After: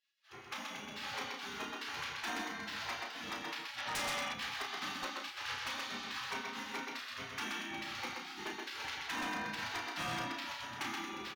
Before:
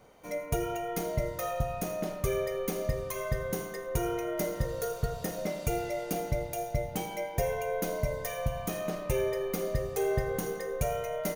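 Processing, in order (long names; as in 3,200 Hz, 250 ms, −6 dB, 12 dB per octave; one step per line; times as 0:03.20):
automatic gain control gain up to 13 dB
gate on every frequency bin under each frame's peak −30 dB weak
high-pass filter 110 Hz 12 dB per octave
high-frequency loss of the air 250 metres
double-tracking delay 33 ms −6 dB
single-tap delay 127 ms −3.5 dB
gain on a spectral selection 0:03.78–0:04.34, 530–6,300 Hz +8 dB
wave folding −34.5 dBFS
level +3 dB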